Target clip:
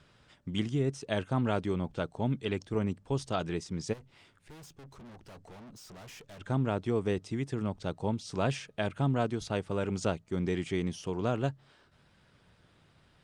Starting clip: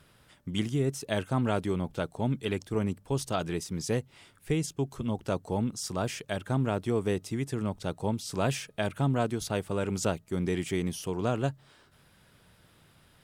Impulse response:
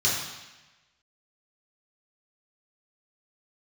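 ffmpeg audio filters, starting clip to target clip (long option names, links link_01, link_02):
-filter_complex "[0:a]lowpass=frequency=7300:width=0.5412,lowpass=frequency=7300:width=1.3066,asplit=3[link_01][link_02][link_03];[link_01]afade=type=out:start_time=3.92:duration=0.02[link_04];[link_02]aeval=exprs='(tanh(200*val(0)+0.3)-tanh(0.3))/200':channel_layout=same,afade=type=in:start_time=3.92:duration=0.02,afade=type=out:start_time=6.39:duration=0.02[link_05];[link_03]afade=type=in:start_time=6.39:duration=0.02[link_06];[link_04][link_05][link_06]amix=inputs=3:normalize=0,volume=-1.5dB" -ar 48000 -c:a libopus -b:a 48k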